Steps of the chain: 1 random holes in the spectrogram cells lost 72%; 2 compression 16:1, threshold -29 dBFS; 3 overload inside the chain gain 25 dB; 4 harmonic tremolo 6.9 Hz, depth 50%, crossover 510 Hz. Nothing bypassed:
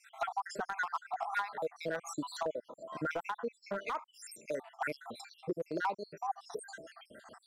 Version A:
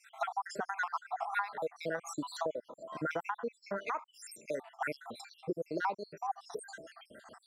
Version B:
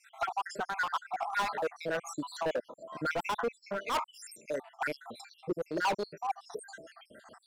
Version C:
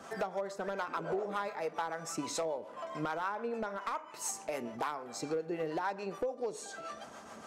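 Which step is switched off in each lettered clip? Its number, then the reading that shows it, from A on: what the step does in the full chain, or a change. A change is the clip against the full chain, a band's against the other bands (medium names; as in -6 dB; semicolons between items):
3, distortion -19 dB; 2, mean gain reduction 4.0 dB; 1, 8 kHz band +6.5 dB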